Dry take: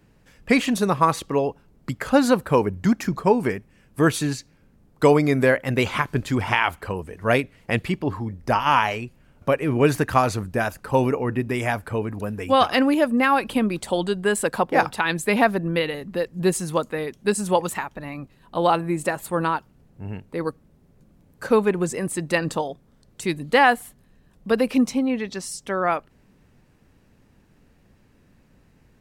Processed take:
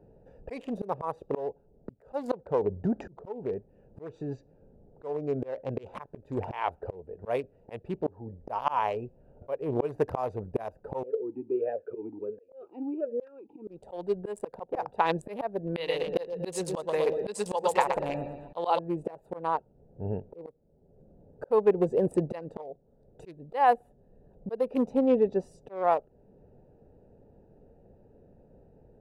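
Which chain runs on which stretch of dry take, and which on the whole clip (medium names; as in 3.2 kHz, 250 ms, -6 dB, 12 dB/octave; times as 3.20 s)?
2.37–5.84 s: steep low-pass 7.4 kHz + compression 2.5:1, threshold -22 dBFS
11.03–13.68 s: slow attack 115 ms + talking filter e-u 1.4 Hz
15.67–18.79 s: peaking EQ 3.9 kHz +13.5 dB 2.6 oct + feedback delay 120 ms, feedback 50%, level -7.5 dB
whole clip: local Wiener filter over 41 samples; high-order bell 650 Hz +13 dB; slow attack 728 ms; trim -1 dB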